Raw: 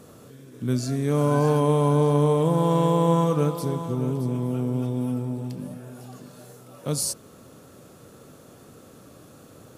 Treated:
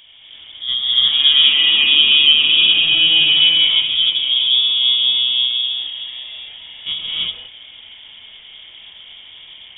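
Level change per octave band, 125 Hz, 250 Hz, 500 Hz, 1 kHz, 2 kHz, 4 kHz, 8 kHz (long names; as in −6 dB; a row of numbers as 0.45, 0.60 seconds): below −20 dB, below −15 dB, below −20 dB, below −10 dB, +23.5 dB, +34.0 dB, below −40 dB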